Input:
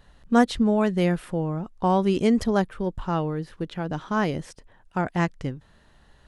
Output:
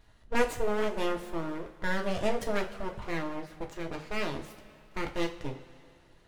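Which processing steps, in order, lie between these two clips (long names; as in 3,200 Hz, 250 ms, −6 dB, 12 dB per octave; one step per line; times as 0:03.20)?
full-wave rectification
coupled-rooms reverb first 0.3 s, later 2.6 s, from −18 dB, DRR 2.5 dB
level −6 dB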